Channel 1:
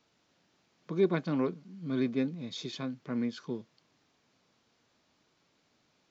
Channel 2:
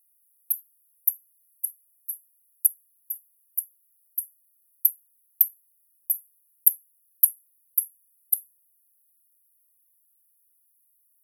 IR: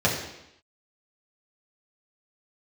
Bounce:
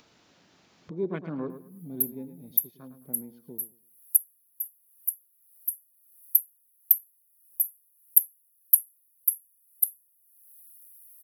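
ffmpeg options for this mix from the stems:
-filter_complex "[0:a]afwtdn=0.01,volume=-4dB,afade=t=out:st=1.51:d=0.76:silence=0.473151,asplit=2[a][b];[b]volume=-11dB[c];[1:a]adelay=1500,volume=-0.5dB[d];[c]aecho=0:1:107|214|321|428:1|0.23|0.0529|0.0122[e];[a][d][e]amix=inputs=3:normalize=0,acompressor=mode=upward:threshold=-38dB:ratio=2.5"

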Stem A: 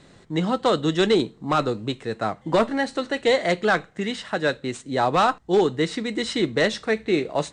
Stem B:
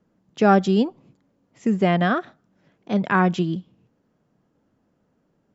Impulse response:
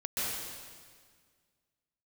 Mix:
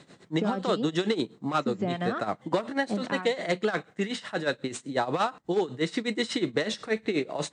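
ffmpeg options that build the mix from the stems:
-filter_complex "[0:a]tremolo=f=8.2:d=0.84,volume=2dB[a];[1:a]acompressor=threshold=-20dB:ratio=6,acrossover=split=830[b][c];[b]aeval=exprs='val(0)*(1-0.7/2+0.7/2*cos(2*PI*4.8*n/s))':c=same[d];[c]aeval=exprs='val(0)*(1-0.7/2-0.7/2*cos(2*PI*4.8*n/s))':c=same[e];[d][e]amix=inputs=2:normalize=0,volume=-1.5dB,afade=t=out:st=3.04:d=0.25:silence=0.298538[f];[a][f]amix=inputs=2:normalize=0,highpass=130,acompressor=threshold=-22dB:ratio=10"

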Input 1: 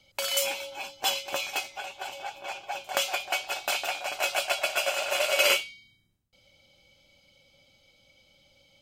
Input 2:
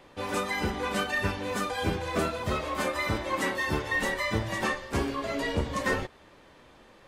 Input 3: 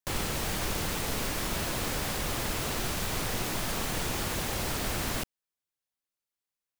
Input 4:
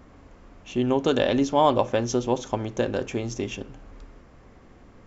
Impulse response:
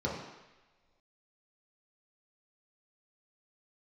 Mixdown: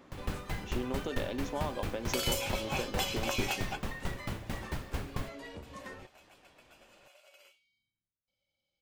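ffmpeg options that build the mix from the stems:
-filter_complex "[0:a]acompressor=threshold=-34dB:ratio=6,adelay=1950,volume=2.5dB[a];[1:a]acompressor=threshold=-34dB:ratio=6,volume=-9dB[b];[2:a]bass=f=250:g=8,treble=f=4k:g=-9,aeval=exprs='val(0)*pow(10,-26*if(lt(mod(4.5*n/s,1),2*abs(4.5)/1000),1-mod(4.5*n/s,1)/(2*abs(4.5)/1000),(mod(4.5*n/s,1)-2*abs(4.5)/1000)/(1-2*abs(4.5)/1000))/20)':c=same,adelay=50,volume=-3dB[c];[3:a]highpass=170,acompressor=threshold=-28dB:ratio=6,volume=-5.5dB,asplit=2[d][e];[e]apad=whole_len=474939[f];[a][f]sidechaingate=range=-27dB:threshold=-50dB:ratio=16:detection=peak[g];[g][b][c][d]amix=inputs=4:normalize=0"

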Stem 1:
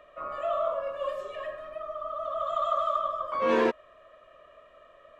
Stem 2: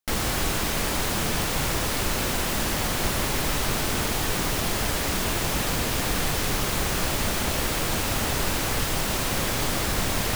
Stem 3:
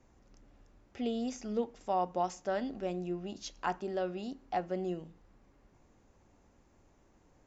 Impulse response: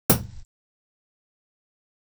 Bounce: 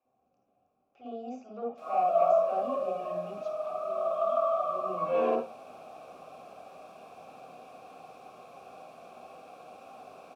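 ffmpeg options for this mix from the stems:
-filter_complex "[0:a]adelay=1650,volume=2dB,asplit=2[a][b];[b]volume=-18dB[c];[1:a]highpass=f=310:p=1,bandreject=f=3k:w=13,adelay=1700,volume=-17dB,asplit=2[d][e];[e]volume=-15dB[f];[2:a]aeval=exprs='0.119*sin(PI/2*2.24*val(0)/0.119)':c=same,volume=6.5dB,afade=t=in:st=0.9:d=0.68:silence=0.446684,afade=t=out:st=3.22:d=0.44:silence=0.266073,afade=t=in:st=4.62:d=0.29:silence=0.223872,asplit=2[g][h];[h]volume=-17.5dB[i];[3:a]atrim=start_sample=2205[j];[c][f][i]amix=inputs=3:normalize=0[k];[k][j]afir=irnorm=-1:irlink=0[l];[a][d][g][l]amix=inputs=4:normalize=0,asplit=3[m][n][o];[m]bandpass=f=730:t=q:w=8,volume=0dB[p];[n]bandpass=f=1.09k:t=q:w=8,volume=-6dB[q];[o]bandpass=f=2.44k:t=q:w=8,volume=-9dB[r];[p][q][r]amix=inputs=3:normalize=0,highshelf=f=4.7k:g=7,bandreject=f=60:t=h:w=6,bandreject=f=120:t=h:w=6,bandreject=f=180:t=h:w=6"

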